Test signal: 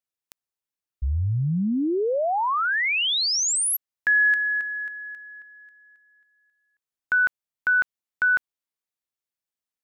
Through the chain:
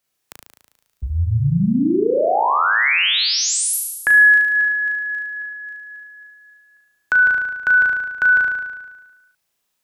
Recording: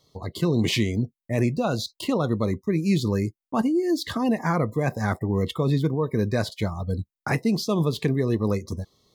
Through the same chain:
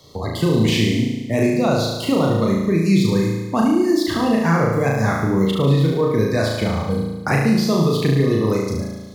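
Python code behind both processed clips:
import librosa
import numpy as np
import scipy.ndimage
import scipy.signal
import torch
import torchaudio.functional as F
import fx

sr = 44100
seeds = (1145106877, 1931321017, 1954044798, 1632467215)

p1 = x + fx.room_flutter(x, sr, wall_m=6.2, rt60_s=0.98, dry=0)
p2 = fx.band_squash(p1, sr, depth_pct=40)
y = p2 * 10.0 ** (2.5 / 20.0)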